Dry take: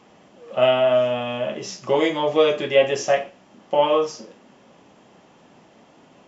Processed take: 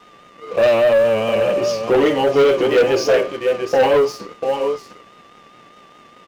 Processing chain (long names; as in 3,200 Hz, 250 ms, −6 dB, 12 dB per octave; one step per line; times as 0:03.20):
parametric band 480 Hz +6 dB 0.9 octaves
single-tap delay 698 ms −9.5 dB
pitch shifter −1.5 semitones
steady tone 1,200 Hz −39 dBFS
pitch vibrato 4.9 Hz 49 cents
leveller curve on the samples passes 3
level −7 dB